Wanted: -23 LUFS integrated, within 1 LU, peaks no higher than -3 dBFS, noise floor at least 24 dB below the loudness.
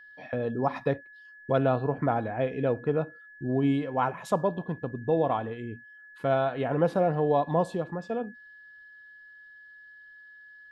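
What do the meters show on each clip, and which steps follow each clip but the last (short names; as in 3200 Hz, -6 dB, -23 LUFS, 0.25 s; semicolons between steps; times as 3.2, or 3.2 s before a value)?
steady tone 1700 Hz; tone level -48 dBFS; loudness -28.5 LUFS; peak -11.5 dBFS; loudness target -23.0 LUFS
-> notch 1700 Hz, Q 30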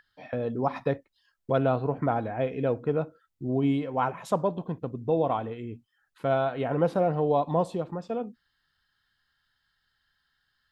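steady tone none; loudness -28.5 LUFS; peak -12.0 dBFS; loudness target -23.0 LUFS
-> gain +5.5 dB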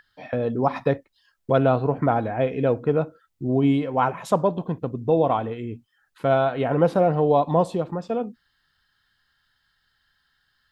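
loudness -23.0 LUFS; peak -6.5 dBFS; noise floor -71 dBFS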